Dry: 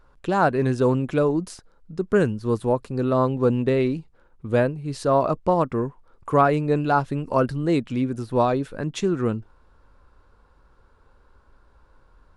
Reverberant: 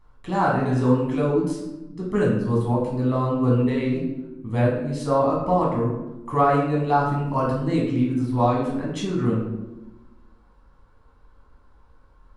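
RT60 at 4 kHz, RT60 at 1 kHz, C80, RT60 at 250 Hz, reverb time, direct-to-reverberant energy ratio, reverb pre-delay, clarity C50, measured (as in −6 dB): 0.60 s, 0.90 s, 6.0 dB, 1.5 s, 1.0 s, −4.5 dB, 10 ms, 2.5 dB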